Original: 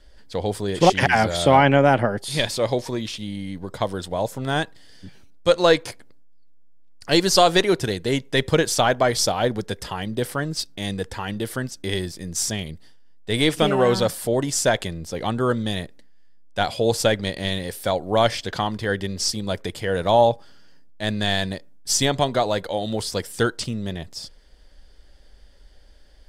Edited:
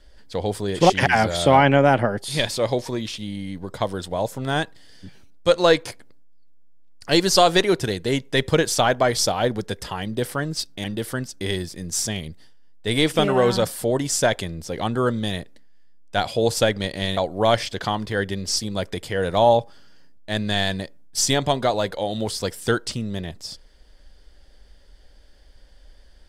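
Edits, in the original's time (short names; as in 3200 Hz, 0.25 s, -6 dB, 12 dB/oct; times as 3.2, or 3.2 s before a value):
10.84–11.27 cut
17.6–17.89 cut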